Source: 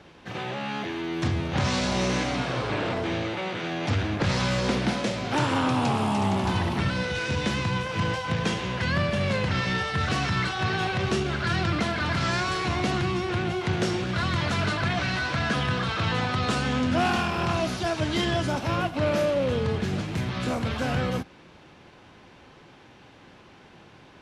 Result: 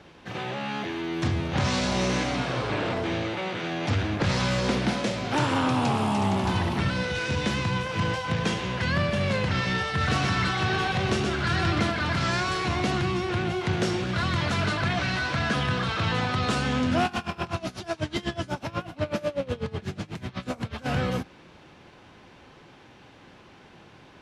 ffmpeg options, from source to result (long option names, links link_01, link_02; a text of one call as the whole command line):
ffmpeg -i in.wav -filter_complex "[0:a]asettb=1/sr,asplit=3[link_01][link_02][link_03];[link_01]atrim=end=9.894[link_04];[link_02]atrim=start=9.89:end=11.91,asetpts=PTS-STARTPTS,afade=type=in:duration=0.004:curve=qsin,afade=type=out:start_time=2.016:duration=0.004:curve=qsin,aecho=1:1:123:0.596,atrim=end_sample=89082[link_05];[link_03]atrim=start=11.906[link_06];[link_04][link_05]acrossfade=duration=0.004:curve1=hsin:curve2=qsin[link_07];[link_07][link_06]acrossfade=duration=0.004:curve1=qsin:curve2=hsin,asettb=1/sr,asplit=3[link_08][link_09][link_10];[link_08]atrim=end=17.054[link_11];[link_09]atrim=start=17.05:end=20.86,asetpts=PTS-STARTPTS,afade=type=in:duration=0.004:curve=qsin,afade=type=out:start_time=3.806:duration=0.004:curve=qsin,aeval=exprs='val(0)*pow(10,-22*(0.5-0.5*cos(2*PI*8.1*n/s))/20)':channel_layout=same[link_12];[link_10]atrim=start=20.856[link_13];[link_11][link_12]acrossfade=duration=0.004:curve1=hsin:curve2=qsin[link_14];[link_14][link_13]acrossfade=duration=0.004:curve1=qsin:curve2=hsin" out.wav